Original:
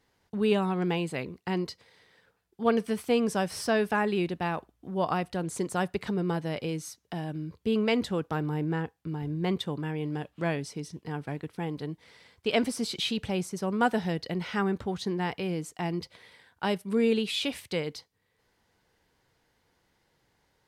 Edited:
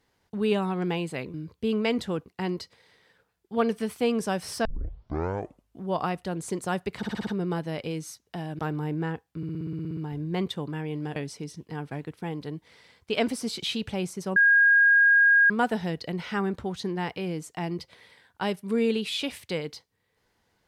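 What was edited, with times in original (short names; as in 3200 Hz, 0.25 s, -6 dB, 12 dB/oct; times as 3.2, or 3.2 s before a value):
3.73 tape start 1.17 s
6.05 stutter 0.06 s, 6 plays
7.37–8.29 move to 1.34
9.07 stutter 0.06 s, 11 plays
10.26–10.52 cut
13.72 add tone 1630 Hz -15 dBFS 1.14 s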